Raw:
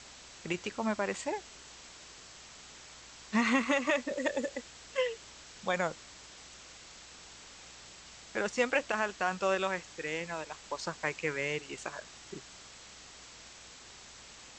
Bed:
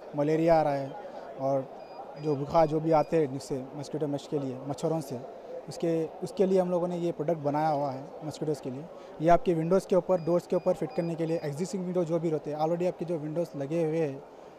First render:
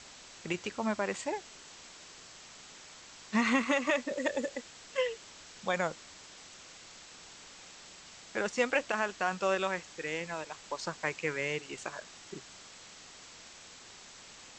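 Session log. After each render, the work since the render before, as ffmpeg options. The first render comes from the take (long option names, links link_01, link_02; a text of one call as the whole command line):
ffmpeg -i in.wav -af "bandreject=frequency=60:width_type=h:width=4,bandreject=frequency=120:width_type=h:width=4" out.wav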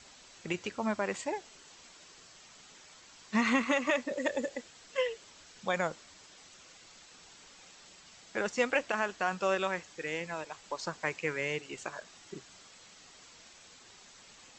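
ffmpeg -i in.wav -af "afftdn=noise_reduction=6:noise_floor=-52" out.wav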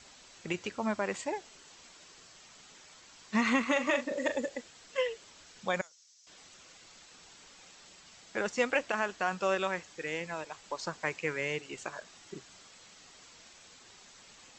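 ffmpeg -i in.wav -filter_complex "[0:a]asettb=1/sr,asplit=3[link_01][link_02][link_03];[link_01]atrim=end=3.724[link_04];[link_02]atrim=start=3.72:end=4.36,asetpts=PTS-STARTPTS,afade=type=in:duration=0.004:curve=qsin,afade=type=out:start_time=0.636:duration=0.004:curve=qsin,asplit=2[link_05][link_06];[link_06]adelay=41,volume=-9dB[link_07];[link_05][link_07]amix=inputs=2:normalize=0,atrim=end_sample=28224[link_08];[link_03]atrim=start=4.356[link_09];[link_04][link_08]acrossfade=duration=0.004:curve1=hsin:curve2=qsin[link_10];[link_10][link_09]acrossfade=duration=0.004:curve1=qsin:curve2=hsin,asettb=1/sr,asplit=3[link_11][link_12][link_13];[link_11]atrim=end=5.814[link_14];[link_12]atrim=start=5.81:end=6.27,asetpts=PTS-STARTPTS,afade=type=in:duration=0.004:curve=qsin,afade=type=out:start_time=0.456:duration=0.004:curve=qsin,bandpass=frequency=5900:width_type=q:width=3.7[link_15];[link_13]atrim=start=6.266[link_16];[link_14][link_15]acrossfade=duration=0.004:curve1=hsin:curve2=qsin[link_17];[link_17][link_16]acrossfade=duration=0.004:curve1=qsin:curve2=hsin" out.wav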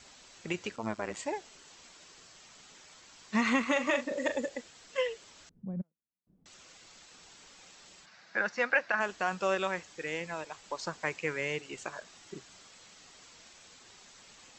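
ffmpeg -i in.wav -filter_complex "[0:a]asettb=1/sr,asplit=3[link_01][link_02][link_03];[link_01]atrim=end=0.764[link_04];[link_02]atrim=start=0.76:end=1.17,asetpts=PTS-STARTPTS,afade=type=in:duration=0.004:curve=qsin,afade=type=out:start_time=0.406:duration=0.004:curve=qsin,tremolo=f=110:d=0.857[link_05];[link_03]atrim=start=1.166[link_06];[link_04][link_05]acrossfade=duration=0.004:curve1=hsin:curve2=qsin[link_07];[link_07][link_06]acrossfade=duration=0.004:curve1=qsin:curve2=hsin,asettb=1/sr,asplit=3[link_08][link_09][link_10];[link_08]atrim=end=5.494[link_11];[link_09]atrim=start=5.49:end=6.46,asetpts=PTS-STARTPTS,afade=type=in:duration=0.004:curve=qsin,afade=type=out:start_time=0.966:duration=0.004:curve=qsin,lowpass=frequency=190:width_type=q:width=2.2[link_12];[link_10]atrim=start=6.456[link_13];[link_11][link_12]acrossfade=duration=0.004:curve1=hsin:curve2=qsin[link_14];[link_14][link_13]acrossfade=duration=0.004:curve1=qsin:curve2=hsin,asplit=3[link_15][link_16][link_17];[link_15]afade=type=out:start_time=8.05:duration=0.02[link_18];[link_16]highpass=170,equalizer=frequency=270:width_type=q:width=4:gain=-9,equalizer=frequency=420:width_type=q:width=4:gain=-8,equalizer=frequency=1600:width_type=q:width=4:gain=9,equalizer=frequency=3200:width_type=q:width=4:gain=-9,lowpass=frequency=5100:width=0.5412,lowpass=frequency=5100:width=1.3066,afade=type=in:start_time=8.05:duration=0.02,afade=type=out:start_time=8.99:duration=0.02[link_19];[link_17]afade=type=in:start_time=8.99:duration=0.02[link_20];[link_18][link_19][link_20]amix=inputs=3:normalize=0" out.wav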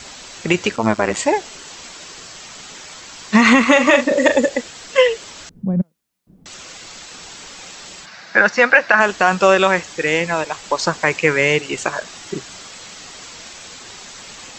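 ffmpeg -i in.wav -af "acontrast=81,alimiter=level_in=11.5dB:limit=-1dB:release=50:level=0:latency=1" out.wav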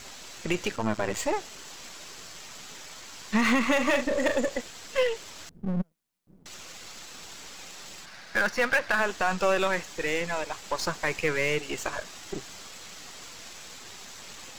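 ffmpeg -i in.wav -af "aeval=exprs='if(lt(val(0),0),0.251*val(0),val(0))':channel_layout=same,aeval=exprs='(tanh(3.16*val(0)+0.7)-tanh(0.7))/3.16':channel_layout=same" out.wav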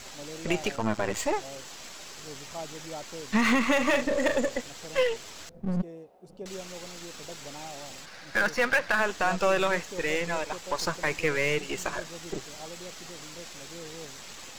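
ffmpeg -i in.wav -i bed.wav -filter_complex "[1:a]volume=-16dB[link_01];[0:a][link_01]amix=inputs=2:normalize=0" out.wav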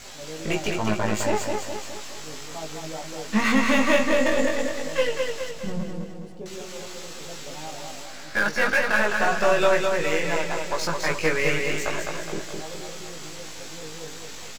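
ffmpeg -i in.wav -filter_complex "[0:a]asplit=2[link_01][link_02];[link_02]adelay=19,volume=-2dB[link_03];[link_01][link_03]amix=inputs=2:normalize=0,aecho=1:1:209|418|627|836|1045|1254|1463:0.631|0.322|0.164|0.0837|0.0427|0.0218|0.0111" out.wav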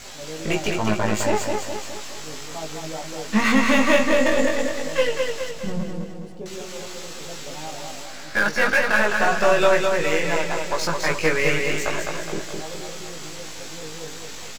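ffmpeg -i in.wav -af "volume=2.5dB" out.wav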